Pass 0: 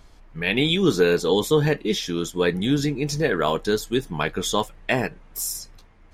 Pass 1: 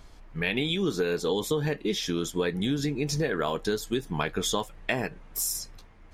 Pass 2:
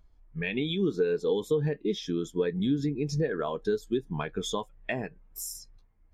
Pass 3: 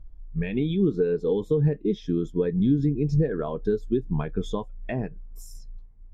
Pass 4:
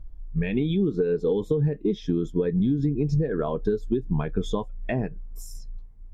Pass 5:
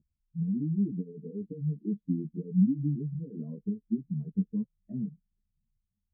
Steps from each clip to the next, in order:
compressor, threshold -24 dBFS, peak gain reduction 10.5 dB
spectral expander 1.5:1; gain -6 dB
tilt -3.5 dB/oct; gain -1.5 dB
compressor, threshold -23 dBFS, peak gain reduction 7 dB; gain +3.5 dB
spectral contrast raised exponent 1.6; Butterworth band-pass 190 Hz, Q 1.6; ensemble effect

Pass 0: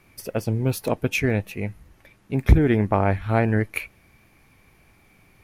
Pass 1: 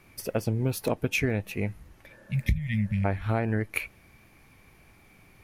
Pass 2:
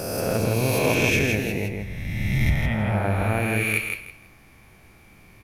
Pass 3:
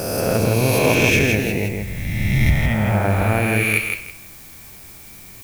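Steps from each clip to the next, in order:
spectral repair 2.12–3.02, 220–1800 Hz before; compressor 6:1, threshold -22 dBFS, peak gain reduction 14 dB
spectral swells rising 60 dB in 2.09 s; feedback echo 0.162 s, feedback 23%, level -4.5 dB
added noise blue -47 dBFS; gain +5 dB

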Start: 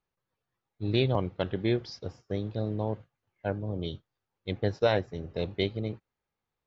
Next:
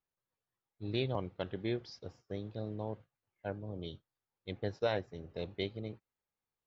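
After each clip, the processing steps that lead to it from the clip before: low shelf 190 Hz -3 dB; gain -7.5 dB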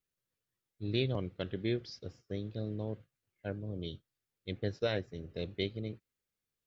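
bell 870 Hz -12.5 dB 0.9 oct; gain +3.5 dB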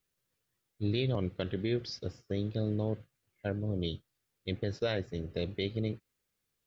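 limiter -27.5 dBFS, peak gain reduction 8 dB; gain +6.5 dB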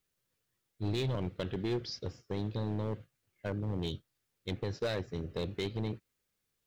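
overloaded stage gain 28 dB

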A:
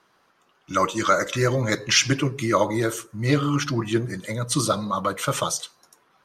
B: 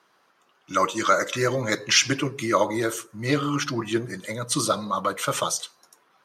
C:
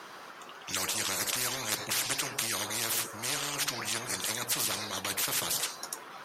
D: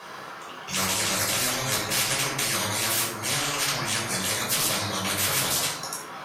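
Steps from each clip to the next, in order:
HPF 240 Hz 6 dB/oct
spectral compressor 10:1; gain -6 dB
shoebox room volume 700 m³, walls furnished, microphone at 5.5 m

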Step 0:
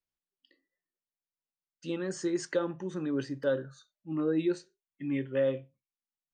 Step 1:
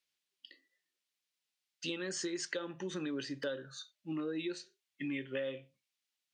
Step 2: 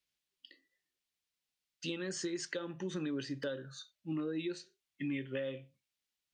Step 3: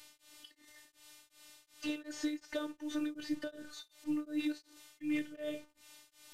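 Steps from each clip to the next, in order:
weighting filter D; compressor 6:1, threshold -37 dBFS, peak gain reduction 13 dB; gain +1.5 dB
low shelf 180 Hz +11 dB; gain -2 dB
delta modulation 64 kbps, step -53 dBFS; robotiser 299 Hz; beating tremolo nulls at 2.7 Hz; gain +5 dB

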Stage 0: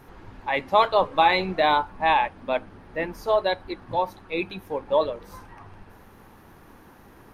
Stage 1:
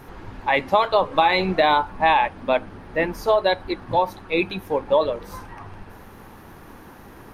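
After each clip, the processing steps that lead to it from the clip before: compressor 6:1, threshold -20 dBFS, peak gain reduction 8 dB; gain +6.5 dB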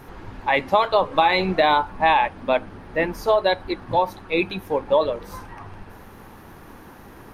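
nothing audible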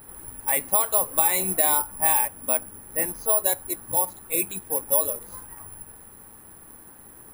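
careless resampling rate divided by 4×, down filtered, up zero stuff; gain -9.5 dB

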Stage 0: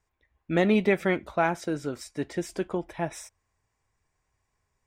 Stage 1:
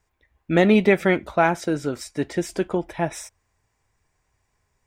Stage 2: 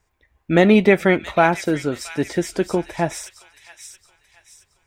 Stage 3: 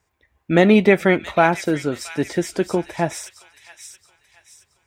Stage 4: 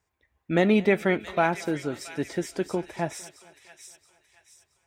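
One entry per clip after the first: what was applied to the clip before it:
notch 1100 Hz, Q 23; gain +6 dB
thin delay 0.674 s, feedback 37%, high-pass 2800 Hz, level -6 dB; gain +3 dB
HPF 63 Hz
thinning echo 0.227 s, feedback 63%, high-pass 160 Hz, level -22 dB; gain -7.5 dB

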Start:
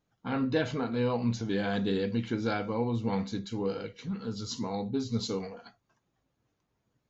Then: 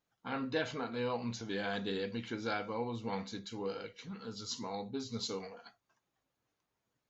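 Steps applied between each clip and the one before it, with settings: low shelf 370 Hz -11 dB; gain -2 dB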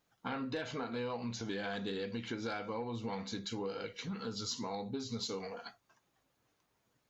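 soft clip -24 dBFS, distortion -24 dB; compressor, threshold -43 dBFS, peak gain reduction 12 dB; gain +7 dB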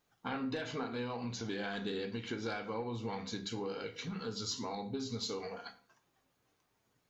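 reverb RT60 0.50 s, pre-delay 3 ms, DRR 8 dB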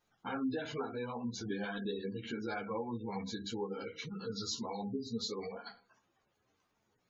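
spectral gate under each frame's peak -20 dB strong; ensemble effect; gain +3 dB

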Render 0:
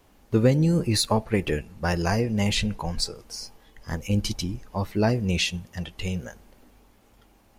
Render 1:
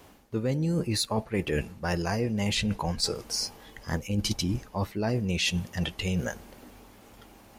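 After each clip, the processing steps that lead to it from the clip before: HPF 74 Hz 6 dB/oct; reverse; compressor 12:1, threshold -32 dBFS, peak gain reduction 18 dB; reverse; gain +7.5 dB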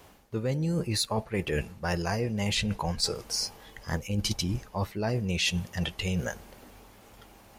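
bell 270 Hz -5 dB 0.73 oct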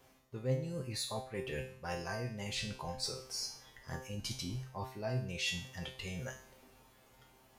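resonator 130 Hz, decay 0.51 s, harmonics all, mix 90%; gain +2.5 dB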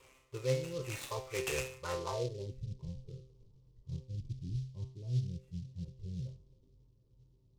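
fixed phaser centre 1100 Hz, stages 8; low-pass sweep 2600 Hz -> 180 Hz, 1.74–2.64; noise-modulated delay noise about 4200 Hz, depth 0.051 ms; gain +4 dB

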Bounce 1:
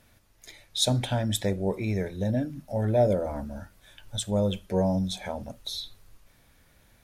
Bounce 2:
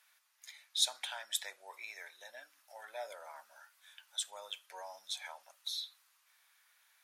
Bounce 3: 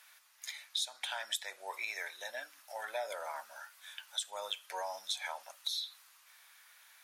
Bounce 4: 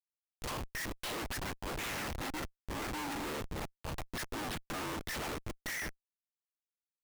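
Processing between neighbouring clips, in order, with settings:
HPF 1000 Hz 24 dB/oct; gain -4.5 dB
compressor 16:1, threshold -42 dBFS, peak gain reduction 18.5 dB; gain +9 dB
cycle switcher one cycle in 2, inverted; Schmitt trigger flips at -45 dBFS; gain +4.5 dB

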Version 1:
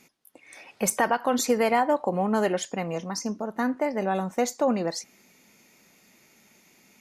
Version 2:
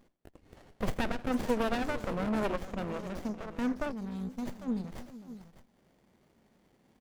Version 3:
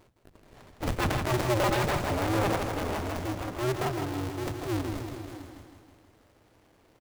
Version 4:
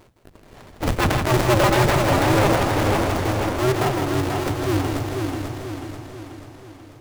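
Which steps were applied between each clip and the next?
tapped delay 83/449/605 ms -20/-16/-14 dB; spectral gain 3.92–5.77, 260–3000 Hz -17 dB; running maximum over 33 samples; gain -4.5 dB
cycle switcher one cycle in 2, inverted; transient shaper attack -7 dB, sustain +2 dB; feedback echo 0.16 s, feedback 58%, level -6.5 dB; gain +4 dB
warbling echo 0.488 s, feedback 52%, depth 51 cents, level -5 dB; gain +8 dB

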